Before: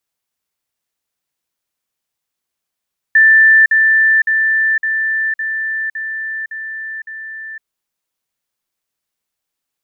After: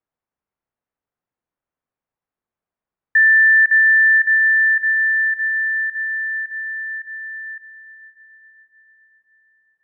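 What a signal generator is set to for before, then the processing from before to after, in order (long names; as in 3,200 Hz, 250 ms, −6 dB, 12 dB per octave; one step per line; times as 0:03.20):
level staircase 1,770 Hz −5 dBFS, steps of −3 dB, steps 8, 0.51 s 0.05 s
low-pass filter 1,700 Hz 12 dB per octave
on a send: feedback delay with all-pass diffusion 578 ms, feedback 52%, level −13 dB
on the sum: one half of a high-frequency compander decoder only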